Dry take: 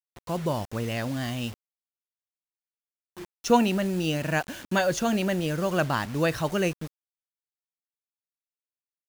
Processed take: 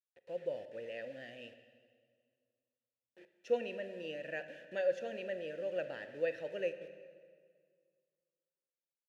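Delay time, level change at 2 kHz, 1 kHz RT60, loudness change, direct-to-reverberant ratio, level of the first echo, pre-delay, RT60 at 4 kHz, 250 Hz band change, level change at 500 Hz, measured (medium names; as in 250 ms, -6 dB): no echo, -14.0 dB, 1.7 s, -13.0 dB, 10.0 dB, no echo, 23 ms, 1.6 s, -24.0 dB, -8.5 dB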